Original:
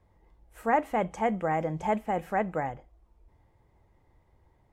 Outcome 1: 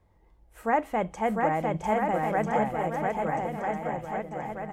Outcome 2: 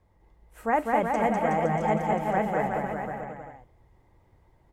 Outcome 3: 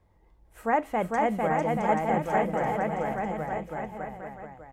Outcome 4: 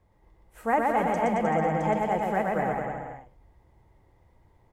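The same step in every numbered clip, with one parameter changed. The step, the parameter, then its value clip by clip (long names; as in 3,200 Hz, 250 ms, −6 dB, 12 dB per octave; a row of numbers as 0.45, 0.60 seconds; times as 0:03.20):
bouncing-ball delay, first gap: 700, 200, 450, 120 milliseconds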